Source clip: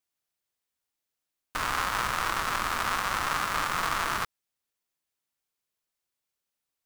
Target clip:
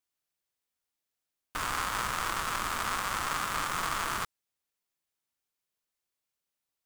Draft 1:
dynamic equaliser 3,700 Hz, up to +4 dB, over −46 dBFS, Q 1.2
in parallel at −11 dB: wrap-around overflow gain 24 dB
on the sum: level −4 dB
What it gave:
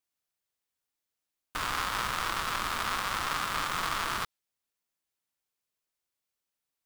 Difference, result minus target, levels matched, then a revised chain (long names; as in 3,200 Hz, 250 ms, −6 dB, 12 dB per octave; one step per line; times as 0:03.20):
8,000 Hz band −2.5 dB
dynamic equaliser 8,300 Hz, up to +4 dB, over −46 dBFS, Q 1.2
in parallel at −11 dB: wrap-around overflow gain 24 dB
on the sum: level −4 dB